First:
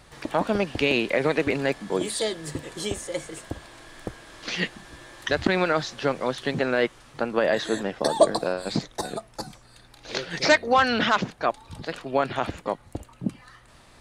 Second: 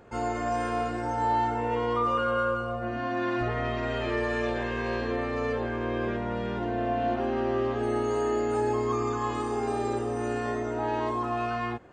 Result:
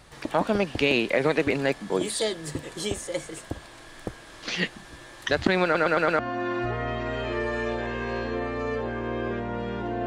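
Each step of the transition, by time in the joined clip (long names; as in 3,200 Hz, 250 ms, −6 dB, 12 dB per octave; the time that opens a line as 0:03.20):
first
0:05.64: stutter in place 0.11 s, 5 plays
0:06.19: continue with second from 0:02.96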